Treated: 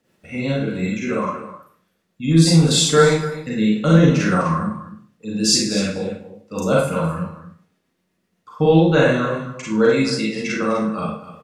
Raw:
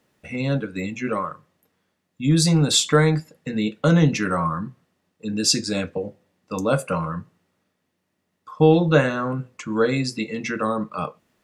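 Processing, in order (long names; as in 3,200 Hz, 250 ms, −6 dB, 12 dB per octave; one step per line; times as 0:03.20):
rotating-speaker cabinet horn 8 Hz
on a send: single-tap delay 252 ms −13.5 dB
on the sum: four-comb reverb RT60 0.44 s, combs from 33 ms, DRR −4.5 dB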